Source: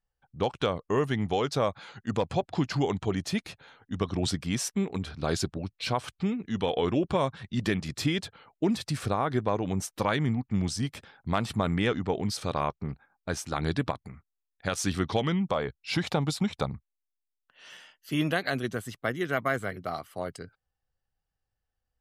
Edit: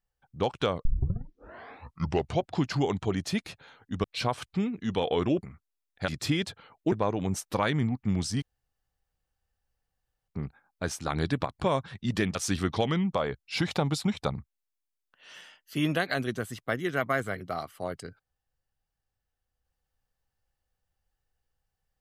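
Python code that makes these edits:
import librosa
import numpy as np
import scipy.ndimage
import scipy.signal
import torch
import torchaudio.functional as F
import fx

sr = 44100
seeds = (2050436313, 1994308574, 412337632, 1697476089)

y = fx.edit(x, sr, fx.tape_start(start_s=0.85, length_s=1.63),
    fx.cut(start_s=4.04, length_s=1.66),
    fx.swap(start_s=7.09, length_s=0.75, other_s=14.06, other_length_s=0.65),
    fx.cut(start_s=8.68, length_s=0.7),
    fx.room_tone_fill(start_s=10.88, length_s=1.86), tone=tone)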